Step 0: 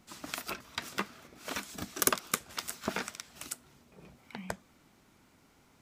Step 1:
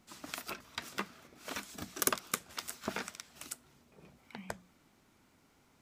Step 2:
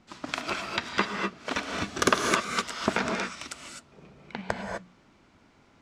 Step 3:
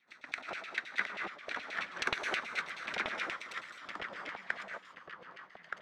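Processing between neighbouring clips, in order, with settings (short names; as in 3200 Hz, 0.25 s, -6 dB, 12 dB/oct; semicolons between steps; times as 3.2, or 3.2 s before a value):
notches 60/120/180 Hz; gain -3.5 dB
sample leveller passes 1; air absorption 110 m; non-linear reverb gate 0.28 s rising, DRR 1.5 dB; gain +8.5 dB
minimum comb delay 0.49 ms; LFO band-pass saw down 9.4 Hz 650–3200 Hz; echoes that change speed 0.671 s, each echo -2 st, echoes 2, each echo -6 dB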